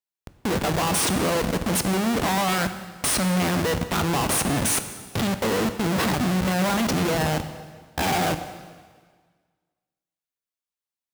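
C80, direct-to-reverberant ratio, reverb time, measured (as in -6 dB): 11.5 dB, 9.0 dB, 1.6 s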